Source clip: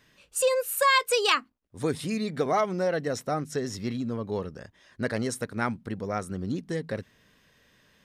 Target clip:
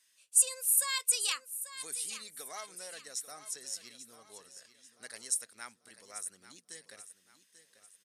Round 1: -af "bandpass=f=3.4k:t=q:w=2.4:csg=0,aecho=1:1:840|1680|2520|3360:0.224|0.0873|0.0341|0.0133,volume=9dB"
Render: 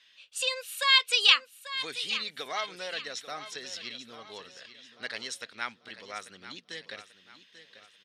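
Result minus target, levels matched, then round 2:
8000 Hz band -15.5 dB
-af "bandpass=f=9.5k:t=q:w=2.4:csg=0,aecho=1:1:840|1680|2520|3360:0.224|0.0873|0.0341|0.0133,volume=9dB"

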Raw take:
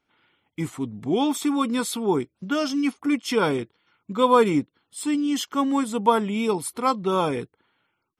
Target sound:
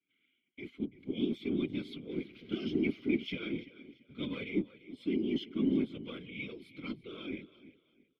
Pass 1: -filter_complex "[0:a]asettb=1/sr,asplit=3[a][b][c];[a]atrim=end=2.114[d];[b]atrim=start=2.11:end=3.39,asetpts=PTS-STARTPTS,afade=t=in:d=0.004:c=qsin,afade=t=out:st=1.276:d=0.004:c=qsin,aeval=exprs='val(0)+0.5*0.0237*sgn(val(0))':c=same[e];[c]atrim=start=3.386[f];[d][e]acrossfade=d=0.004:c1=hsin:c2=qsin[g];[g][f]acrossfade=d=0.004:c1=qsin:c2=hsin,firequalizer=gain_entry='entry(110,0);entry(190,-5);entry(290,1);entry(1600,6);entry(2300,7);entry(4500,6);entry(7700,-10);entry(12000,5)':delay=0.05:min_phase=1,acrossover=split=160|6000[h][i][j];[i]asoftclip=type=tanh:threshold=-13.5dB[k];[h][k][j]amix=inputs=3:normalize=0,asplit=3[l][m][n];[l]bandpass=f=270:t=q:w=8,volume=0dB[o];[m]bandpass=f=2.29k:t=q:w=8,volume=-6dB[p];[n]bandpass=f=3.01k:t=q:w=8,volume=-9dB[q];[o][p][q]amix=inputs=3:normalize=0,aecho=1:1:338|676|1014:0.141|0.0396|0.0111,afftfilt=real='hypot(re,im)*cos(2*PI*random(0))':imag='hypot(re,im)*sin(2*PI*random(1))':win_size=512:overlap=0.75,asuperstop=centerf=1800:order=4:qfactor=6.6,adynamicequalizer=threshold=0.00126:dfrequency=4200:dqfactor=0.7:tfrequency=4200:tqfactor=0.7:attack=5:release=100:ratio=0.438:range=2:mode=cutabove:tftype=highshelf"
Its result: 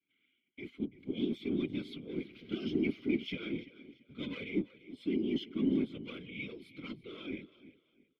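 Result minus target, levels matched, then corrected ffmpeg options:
soft clip: distortion +10 dB
-filter_complex "[0:a]asettb=1/sr,asplit=3[a][b][c];[a]atrim=end=2.114[d];[b]atrim=start=2.11:end=3.39,asetpts=PTS-STARTPTS,afade=t=in:d=0.004:c=qsin,afade=t=out:st=1.276:d=0.004:c=qsin,aeval=exprs='val(0)+0.5*0.0237*sgn(val(0))':c=same[e];[c]atrim=start=3.386[f];[d][e]acrossfade=d=0.004:c1=hsin:c2=qsin[g];[g][f]acrossfade=d=0.004:c1=qsin:c2=hsin,firequalizer=gain_entry='entry(110,0);entry(190,-5);entry(290,1);entry(1600,6);entry(2300,7);entry(4500,6);entry(7700,-10);entry(12000,5)':delay=0.05:min_phase=1,acrossover=split=160|6000[h][i][j];[i]asoftclip=type=tanh:threshold=-5dB[k];[h][k][j]amix=inputs=3:normalize=0,asplit=3[l][m][n];[l]bandpass=f=270:t=q:w=8,volume=0dB[o];[m]bandpass=f=2.29k:t=q:w=8,volume=-6dB[p];[n]bandpass=f=3.01k:t=q:w=8,volume=-9dB[q];[o][p][q]amix=inputs=3:normalize=0,aecho=1:1:338|676|1014:0.141|0.0396|0.0111,afftfilt=real='hypot(re,im)*cos(2*PI*random(0))':imag='hypot(re,im)*sin(2*PI*random(1))':win_size=512:overlap=0.75,asuperstop=centerf=1800:order=4:qfactor=6.6,adynamicequalizer=threshold=0.00126:dfrequency=4200:dqfactor=0.7:tfrequency=4200:tqfactor=0.7:attack=5:release=100:ratio=0.438:range=2:mode=cutabove:tftype=highshelf"

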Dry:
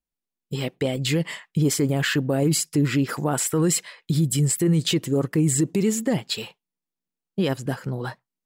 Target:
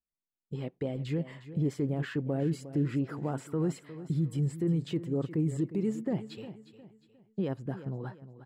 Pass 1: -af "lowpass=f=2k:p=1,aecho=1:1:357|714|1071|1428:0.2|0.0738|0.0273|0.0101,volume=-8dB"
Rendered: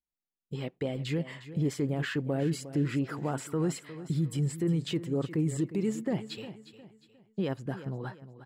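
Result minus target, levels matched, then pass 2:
2000 Hz band +5.5 dB
-af "lowpass=f=720:p=1,aecho=1:1:357|714|1071|1428:0.2|0.0738|0.0273|0.0101,volume=-8dB"

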